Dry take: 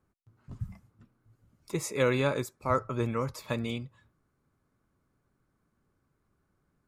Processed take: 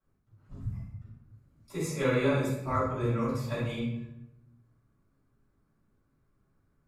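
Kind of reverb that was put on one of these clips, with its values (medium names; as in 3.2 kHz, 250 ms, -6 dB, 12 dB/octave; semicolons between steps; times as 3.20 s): simulated room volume 250 m³, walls mixed, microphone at 6.2 m; trim -16 dB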